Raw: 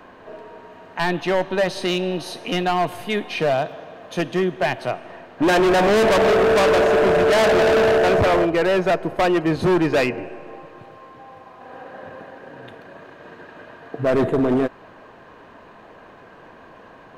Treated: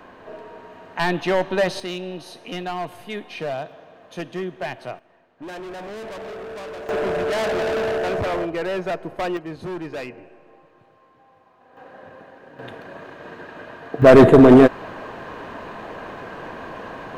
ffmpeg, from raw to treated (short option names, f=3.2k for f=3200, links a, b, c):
-af "asetnsamples=n=441:p=0,asendcmd='1.8 volume volume -8dB;4.99 volume volume -18.5dB;6.89 volume volume -7dB;9.37 volume volume -13dB;11.77 volume volume -5.5dB;12.59 volume volume 3dB;14.02 volume volume 10dB',volume=0dB"